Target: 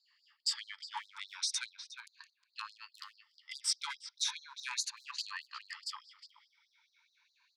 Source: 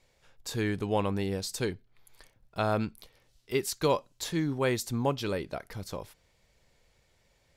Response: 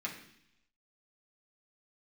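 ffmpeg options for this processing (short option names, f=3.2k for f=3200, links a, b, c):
-filter_complex "[0:a]afftfilt=real='re*pow(10,14/40*sin(2*PI*(1.5*log(max(b,1)*sr/1024/100)/log(2)-(0.37)*(pts-256)/sr)))':imag='im*pow(10,14/40*sin(2*PI*(1.5*log(max(b,1)*sr/1024/100)/log(2)-(0.37)*(pts-256)/sr)))':win_size=1024:overlap=0.75,equalizer=f=160:t=o:w=0.25:g=-9,acrossover=split=540|4800[a][b][c];[a]volume=28dB,asoftclip=hard,volume=-28dB[d];[b]alimiter=level_in=3dB:limit=-24dB:level=0:latency=1:release=296,volume=-3dB[e];[c]acrusher=bits=6:mix=0:aa=0.000001[f];[d][e][f]amix=inputs=3:normalize=0,highpass=f=100:w=0.5412,highpass=f=100:w=1.3066,equalizer=f=140:t=q:w=4:g=-9,equalizer=f=240:t=q:w=4:g=-10,equalizer=f=4.8k:t=q:w=4:g=7,lowpass=f=8.1k:w=0.5412,lowpass=f=8.1k:w=1.3066,asplit=2[g][h];[h]adelay=360,highpass=300,lowpass=3.4k,asoftclip=type=hard:threshold=-26.5dB,volume=-7dB[i];[g][i]amix=inputs=2:normalize=0,afftfilt=real='re*gte(b*sr/1024,820*pow(3900/820,0.5+0.5*sin(2*PI*4.8*pts/sr)))':imag='im*gte(b*sr/1024,820*pow(3900/820,0.5+0.5*sin(2*PI*4.8*pts/sr)))':win_size=1024:overlap=0.75"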